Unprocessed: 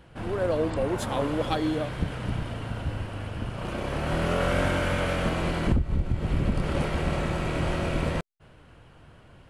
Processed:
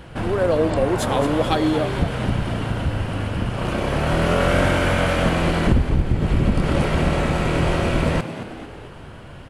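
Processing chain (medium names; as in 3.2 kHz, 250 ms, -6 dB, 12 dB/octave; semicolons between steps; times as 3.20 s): in parallel at +3 dB: compression, threshold -37 dBFS, peak gain reduction 17.5 dB; on the sum: frequency-shifting echo 222 ms, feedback 50%, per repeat +82 Hz, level -11.5 dB; trim +4.5 dB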